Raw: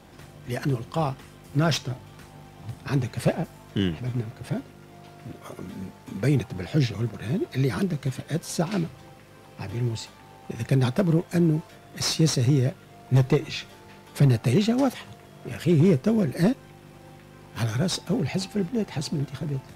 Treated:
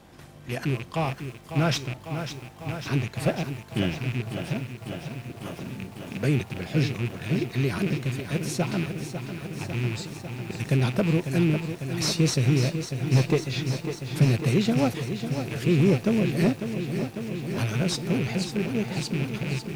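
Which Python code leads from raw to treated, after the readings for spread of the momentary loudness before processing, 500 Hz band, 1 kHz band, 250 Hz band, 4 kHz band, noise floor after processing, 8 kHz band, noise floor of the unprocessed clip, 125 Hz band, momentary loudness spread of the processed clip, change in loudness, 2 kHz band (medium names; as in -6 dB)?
18 LU, -0.5 dB, 0.0 dB, -0.5 dB, +0.5 dB, -45 dBFS, -0.5 dB, -49 dBFS, -0.5 dB, 13 LU, -1.5 dB, +3.5 dB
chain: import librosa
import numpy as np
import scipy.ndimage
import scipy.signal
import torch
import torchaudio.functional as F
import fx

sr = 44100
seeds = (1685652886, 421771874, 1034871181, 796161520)

y = fx.rattle_buzz(x, sr, strikes_db=-31.0, level_db=-24.0)
y = fx.echo_crushed(y, sr, ms=549, feedback_pct=80, bits=8, wet_db=-9.0)
y = y * 10.0 ** (-1.5 / 20.0)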